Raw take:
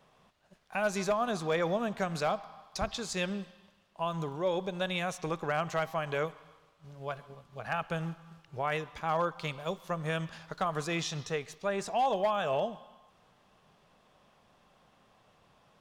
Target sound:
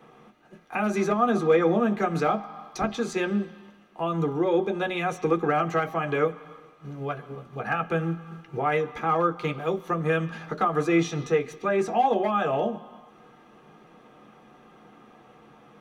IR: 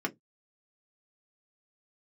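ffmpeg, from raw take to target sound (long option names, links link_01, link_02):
-filter_complex "[0:a]asplit=2[link_01][link_02];[link_02]acompressor=threshold=-44dB:ratio=6,volume=2dB[link_03];[link_01][link_03]amix=inputs=2:normalize=0,equalizer=frequency=3400:width=0.58:gain=-2.5[link_04];[1:a]atrim=start_sample=2205,asetrate=48510,aresample=44100[link_05];[link_04][link_05]afir=irnorm=-1:irlink=0"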